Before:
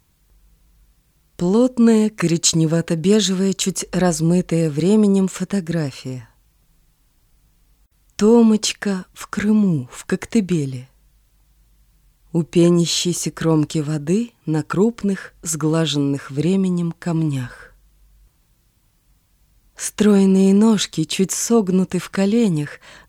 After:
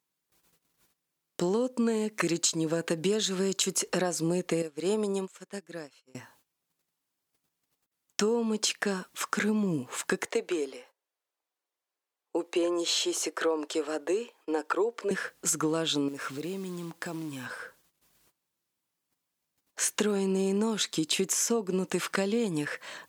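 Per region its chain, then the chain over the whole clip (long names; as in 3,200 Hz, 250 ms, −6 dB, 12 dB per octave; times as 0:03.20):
0:04.62–0:06.15: low-shelf EQ 240 Hz −8.5 dB + expander for the loud parts 2.5 to 1, over −31 dBFS
0:10.26–0:15.11: high-pass filter 430 Hz 24 dB per octave + spectral tilt −2.5 dB per octave
0:16.08–0:17.46: low-shelf EQ 95 Hz −2 dB + downward compressor, threshold −28 dBFS + log-companded quantiser 6 bits
whole clip: noise gate −53 dBFS, range −18 dB; high-pass filter 300 Hz 12 dB per octave; downward compressor 10 to 1, threshold −24 dBFS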